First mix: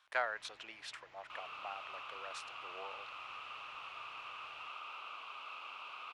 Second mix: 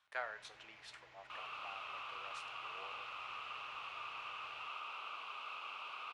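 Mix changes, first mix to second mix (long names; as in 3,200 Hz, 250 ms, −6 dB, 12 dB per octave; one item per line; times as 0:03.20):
speech −8.5 dB
reverb: on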